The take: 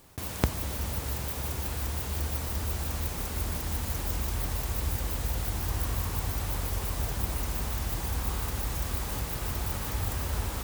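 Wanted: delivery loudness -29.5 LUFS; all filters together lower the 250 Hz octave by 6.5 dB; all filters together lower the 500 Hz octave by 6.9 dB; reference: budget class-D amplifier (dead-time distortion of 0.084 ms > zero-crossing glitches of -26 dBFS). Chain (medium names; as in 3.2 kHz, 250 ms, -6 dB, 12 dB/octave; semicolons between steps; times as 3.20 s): peaking EQ 250 Hz -8 dB; peaking EQ 500 Hz -6.5 dB; dead-time distortion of 0.084 ms; zero-crossing glitches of -26 dBFS; trim +3 dB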